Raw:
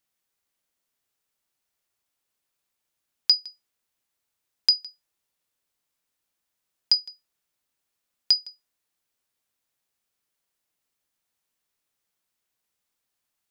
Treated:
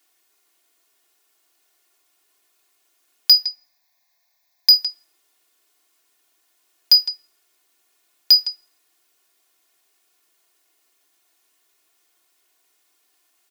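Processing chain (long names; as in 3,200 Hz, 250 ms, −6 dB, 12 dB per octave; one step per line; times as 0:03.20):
high-pass filter 280 Hz 24 dB per octave
comb filter 2.8 ms, depth 88%
in parallel at +3 dB: brickwall limiter −15.5 dBFS, peak gain reduction 9.5 dB
0:03.32–0:04.70: on the sum: phaser with its sweep stopped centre 2,000 Hz, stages 8
soft clipping −11 dBFS, distortion −11 dB
on a send at −15 dB: convolution reverb RT60 0.80 s, pre-delay 6 ms
on the sum: level +5 dB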